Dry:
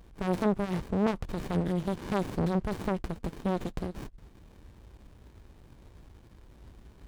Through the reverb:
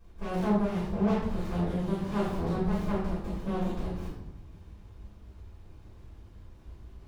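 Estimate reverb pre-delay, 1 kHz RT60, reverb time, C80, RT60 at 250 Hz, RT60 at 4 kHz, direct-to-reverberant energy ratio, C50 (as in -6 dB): 3 ms, 0.90 s, 0.90 s, 4.5 dB, 1.3 s, 0.65 s, -14.0 dB, 0.5 dB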